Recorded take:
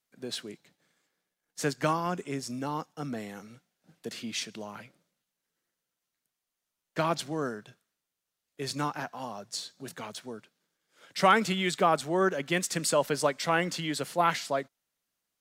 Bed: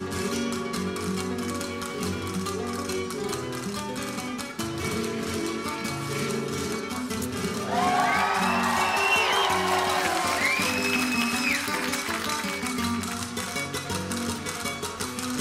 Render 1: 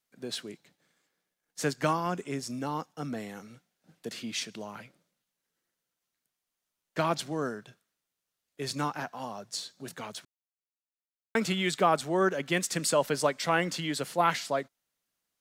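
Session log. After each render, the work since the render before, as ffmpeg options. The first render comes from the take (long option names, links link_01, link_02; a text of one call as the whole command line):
ffmpeg -i in.wav -filter_complex "[0:a]asplit=3[link_01][link_02][link_03];[link_01]atrim=end=10.25,asetpts=PTS-STARTPTS,afade=type=out:start_time=10.246:duration=0.004:curve=hsin[link_04];[link_02]atrim=start=10.25:end=11.35,asetpts=PTS-STARTPTS,volume=0[link_05];[link_03]atrim=start=11.35,asetpts=PTS-STARTPTS,afade=type=in:duration=0.004:curve=hsin[link_06];[link_04][link_05][link_06]concat=n=3:v=0:a=1" out.wav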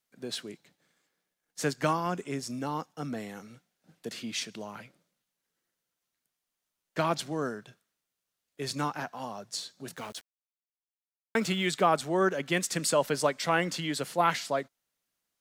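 ffmpeg -i in.wav -filter_complex "[0:a]asettb=1/sr,asplit=3[link_01][link_02][link_03];[link_01]atrim=end=9.964[link_04];[link_02]atrim=start=9.96:end=11.66,asetpts=PTS-STARTPTS,afade=type=in:duration=0.004:curve=qsin,afade=type=out:start_time=1.696:duration=0.004:curve=qsin,aeval=exprs='val(0)*gte(abs(val(0)),0.00447)':channel_layout=same[link_05];[link_03]atrim=start=11.656[link_06];[link_04][link_05]acrossfade=duration=0.004:curve1=hsin:curve2=qsin[link_07];[link_07][link_06]acrossfade=duration=0.004:curve1=qsin:curve2=hsin" out.wav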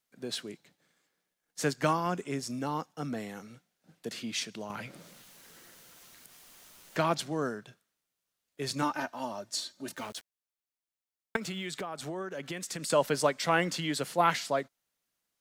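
ffmpeg -i in.wav -filter_complex "[0:a]asettb=1/sr,asplit=3[link_01][link_02][link_03];[link_01]atrim=end=4.704[link_04];[link_02]atrim=start=4.7:end=7.14,asetpts=PTS-STARTPTS,afade=type=in:duration=0.004:curve=qsin,afade=type=out:start_time=2.436:duration=0.004:curve=qsin,acompressor=mode=upward:threshold=-30dB:ratio=2.5:attack=3.2:release=140:knee=2.83:detection=peak[link_05];[link_03]atrim=start=7.136[link_06];[link_04][link_05]acrossfade=duration=0.004:curve1=hsin:curve2=qsin[link_07];[link_07][link_06]acrossfade=duration=0.004:curve1=qsin:curve2=hsin,asettb=1/sr,asplit=3[link_08][link_09][link_10];[link_08]atrim=end=8.824[link_11];[link_09]atrim=start=8.82:end=10.03,asetpts=PTS-STARTPTS,afade=type=in:duration=0.004:curve=qsin,afade=type=out:start_time=1.206:duration=0.004:curve=qsin,aecho=1:1:3.3:0.65,atrim=end_sample=53361[link_12];[link_10]atrim=start=10.026[link_13];[link_11][link_12]acrossfade=duration=0.004:curve1=hsin:curve2=qsin[link_14];[link_14][link_13]acrossfade=duration=0.004:curve1=qsin:curve2=hsin,asettb=1/sr,asplit=3[link_15][link_16][link_17];[link_15]atrim=end=11.364[link_18];[link_16]atrim=start=11.36:end=12.9,asetpts=PTS-STARTPTS,afade=type=in:duration=0.004:curve=qsin,afade=type=out:start_time=1.536:duration=0.004:curve=qsin,acompressor=threshold=-33dB:ratio=12:attack=3.2:release=140:knee=1:detection=peak[link_19];[link_17]atrim=start=12.896[link_20];[link_18][link_19]acrossfade=duration=0.004:curve1=hsin:curve2=qsin[link_21];[link_21][link_20]acrossfade=duration=0.004:curve1=qsin:curve2=hsin" out.wav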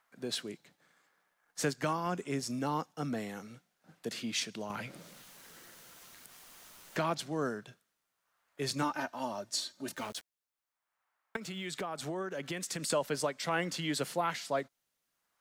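ffmpeg -i in.wav -filter_complex "[0:a]acrossover=split=870|1500[link_01][link_02][link_03];[link_02]acompressor=mode=upward:threshold=-60dB:ratio=2.5[link_04];[link_01][link_04][link_03]amix=inputs=3:normalize=0,alimiter=limit=-20.5dB:level=0:latency=1:release=496" out.wav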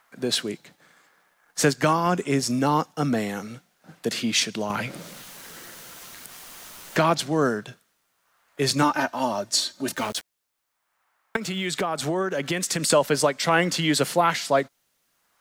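ffmpeg -i in.wav -af "volume=12dB" out.wav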